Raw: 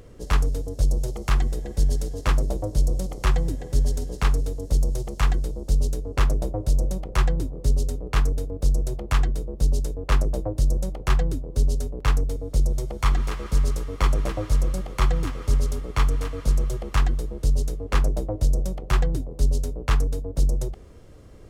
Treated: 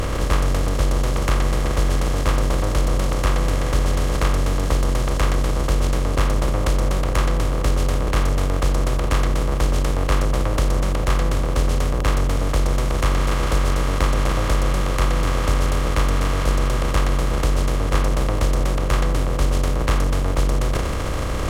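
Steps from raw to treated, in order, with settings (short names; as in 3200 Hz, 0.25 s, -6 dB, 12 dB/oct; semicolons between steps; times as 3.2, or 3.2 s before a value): per-bin compression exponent 0.2; transient shaper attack +6 dB, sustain +10 dB; gain -4 dB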